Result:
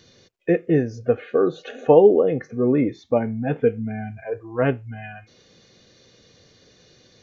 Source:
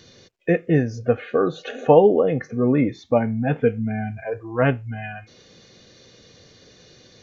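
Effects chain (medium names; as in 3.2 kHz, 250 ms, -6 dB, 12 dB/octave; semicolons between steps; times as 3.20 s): dynamic bell 380 Hz, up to +7 dB, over -32 dBFS, Q 1.6; trim -4 dB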